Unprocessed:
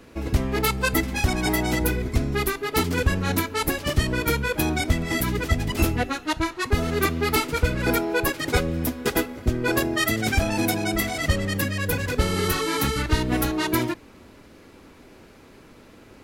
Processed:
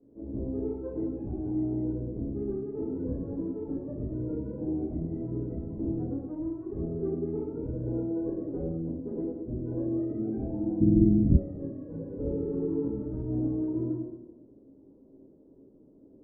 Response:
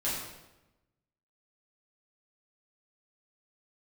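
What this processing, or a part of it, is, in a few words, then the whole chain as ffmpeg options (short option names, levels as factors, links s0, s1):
next room: -filter_complex "[0:a]lowpass=f=430:w=0.5412,lowpass=f=430:w=1.3066,aemphasis=mode=production:type=riaa[s0];[1:a]atrim=start_sample=2205[s1];[s0][s1]afir=irnorm=-1:irlink=0,asplit=3[s2][s3][s4];[s2]afade=t=out:st=10.8:d=0.02[s5];[s3]asubboost=boost=12:cutoff=200,afade=t=in:st=10.8:d=0.02,afade=t=out:st=11.36:d=0.02[s6];[s4]afade=t=in:st=11.36:d=0.02[s7];[s5][s6][s7]amix=inputs=3:normalize=0,asettb=1/sr,asplit=3[s8][s9][s10];[s8]atrim=end=12.244[s11];[s9]atrim=start=12.24:end=12.88,asetpts=PTS-STARTPTS,afade=t=in:d=0.004:c=qsin,afade=t=out:st=0.636:d=0.004:c=qsin,asplit=2[s12][s13];[s13]adelay=25,volume=0.708[s14];[s12][s14]amix=inputs=2:normalize=0,atrim=end_sample=28224[s15];[s10]atrim=start=12.876[s16];[s11][s15]acrossfade=d=0.004:c1=hsin:c2=qsin[s17];[s17][s16]acrossfade=d=0.004:c1=qsin:c2=hsin,volume=0.447"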